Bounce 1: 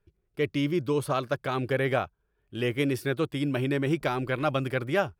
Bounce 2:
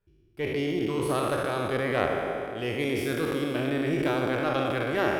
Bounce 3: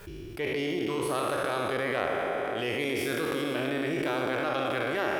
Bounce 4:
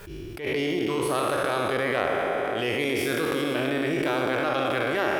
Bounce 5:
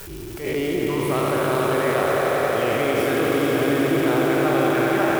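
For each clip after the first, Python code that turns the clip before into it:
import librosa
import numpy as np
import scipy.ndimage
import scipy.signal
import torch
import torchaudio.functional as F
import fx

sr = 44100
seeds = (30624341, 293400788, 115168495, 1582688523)

y1 = fx.spec_trails(x, sr, decay_s=2.56)
y1 = fx.cheby_harmonics(y1, sr, harmonics=(2,), levels_db=(-10,), full_scale_db=-7.5)
y1 = fx.echo_banded(y1, sr, ms=126, feedback_pct=73, hz=320.0, wet_db=-5.0)
y1 = F.gain(torch.from_numpy(y1), -5.5).numpy()
y2 = fx.low_shelf(y1, sr, hz=270.0, db=-9.5)
y2 = fx.env_flatten(y2, sr, amount_pct=70)
y2 = F.gain(torch.from_numpy(y2), -3.0).numpy()
y3 = fx.attack_slew(y2, sr, db_per_s=120.0)
y3 = F.gain(torch.from_numpy(y3), 4.0).numpy()
y4 = y3 + 0.5 * 10.0 ** (-24.5 / 20.0) * np.diff(np.sign(y3), prepend=np.sign(y3[:1]))
y4 = fx.high_shelf(y4, sr, hz=2200.0, db=-10.0)
y4 = fx.echo_swell(y4, sr, ms=90, loudest=5, wet_db=-8)
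y4 = F.gain(torch.from_numpy(y4), 3.0).numpy()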